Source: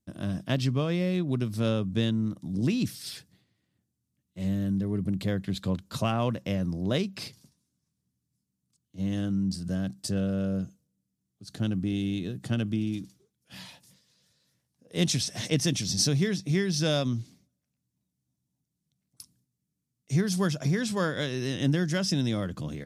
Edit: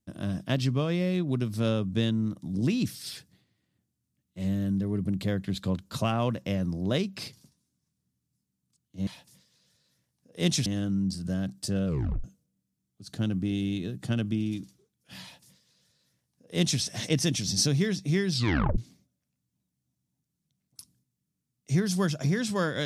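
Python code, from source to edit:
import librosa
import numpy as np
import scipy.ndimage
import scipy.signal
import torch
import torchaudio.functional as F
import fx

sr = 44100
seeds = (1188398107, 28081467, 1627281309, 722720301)

y = fx.edit(x, sr, fx.tape_stop(start_s=10.27, length_s=0.38),
    fx.duplicate(start_s=13.63, length_s=1.59, to_s=9.07),
    fx.tape_stop(start_s=16.72, length_s=0.47), tone=tone)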